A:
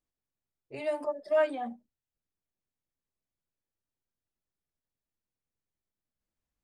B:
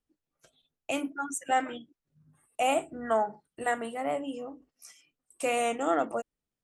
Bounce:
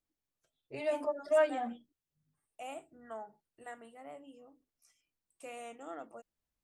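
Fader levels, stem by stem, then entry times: -1.5, -18.0 dB; 0.00, 0.00 s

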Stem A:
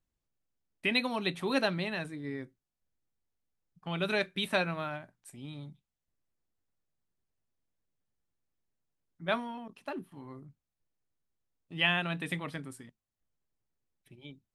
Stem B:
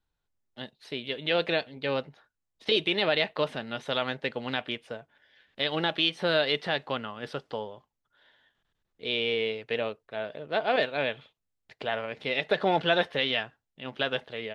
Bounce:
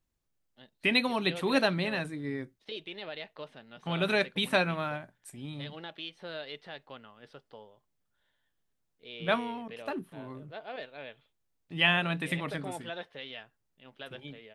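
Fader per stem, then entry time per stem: +3.0, -15.5 dB; 0.00, 0.00 s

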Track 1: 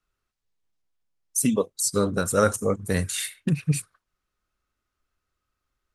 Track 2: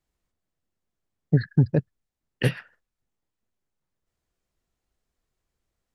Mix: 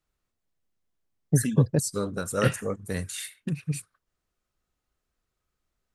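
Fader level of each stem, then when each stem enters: -6.5, -2.0 dB; 0.00, 0.00 s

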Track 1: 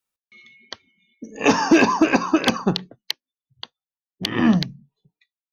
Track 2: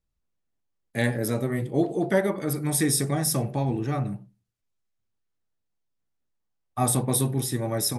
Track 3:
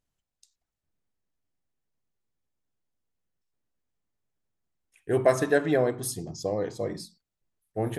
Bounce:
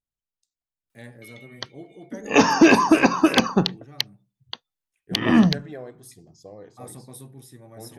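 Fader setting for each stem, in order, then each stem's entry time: +1.0, -18.5, -14.0 dB; 0.90, 0.00, 0.00 s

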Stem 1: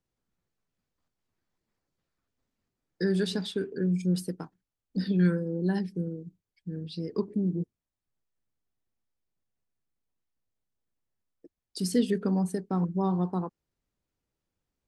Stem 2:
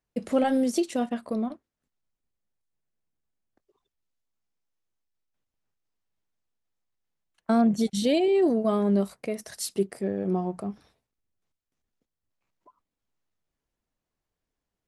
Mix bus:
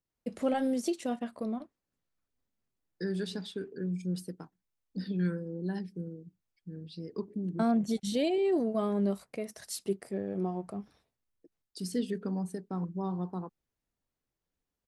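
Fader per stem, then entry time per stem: -7.0, -6.0 dB; 0.00, 0.10 s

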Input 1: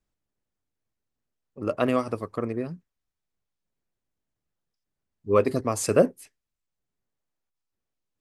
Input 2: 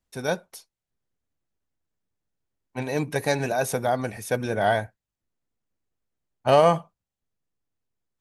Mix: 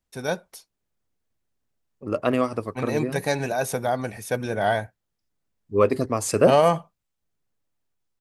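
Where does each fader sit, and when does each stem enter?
+1.5, -0.5 dB; 0.45, 0.00 s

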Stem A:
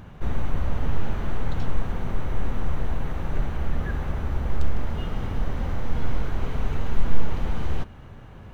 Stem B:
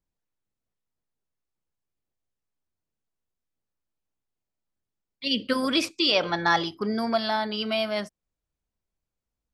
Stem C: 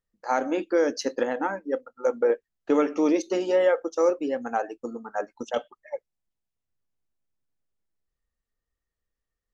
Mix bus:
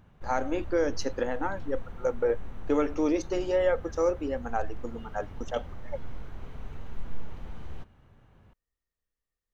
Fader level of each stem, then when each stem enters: -14.5 dB, off, -4.0 dB; 0.00 s, off, 0.00 s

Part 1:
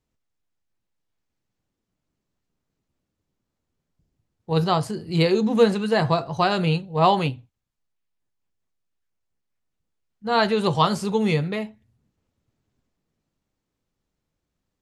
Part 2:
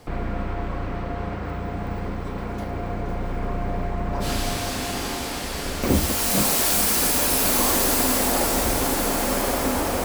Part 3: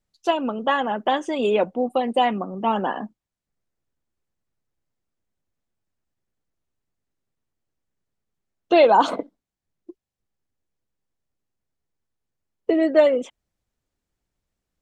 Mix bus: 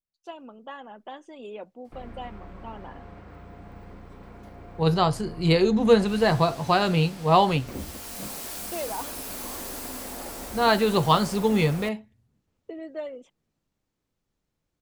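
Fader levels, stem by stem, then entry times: -0.5, -15.5, -19.0 dB; 0.30, 1.85, 0.00 s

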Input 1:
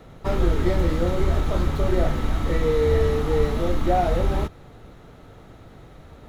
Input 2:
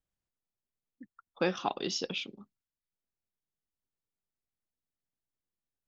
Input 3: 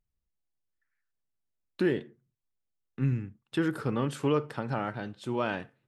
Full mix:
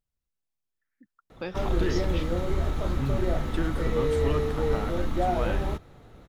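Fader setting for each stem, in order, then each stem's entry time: -5.5, -6.0, -3.0 dB; 1.30, 0.00, 0.00 s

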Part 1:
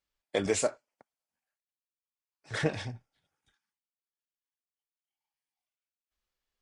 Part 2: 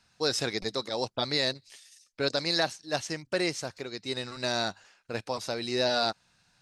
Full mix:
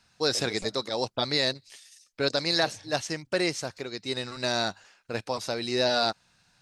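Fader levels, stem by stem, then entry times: -13.5, +2.0 dB; 0.00, 0.00 s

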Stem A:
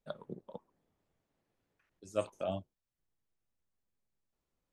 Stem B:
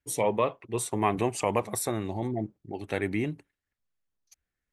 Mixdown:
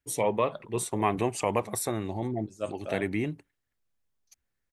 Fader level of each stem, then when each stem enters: 0.0, -0.5 dB; 0.45, 0.00 s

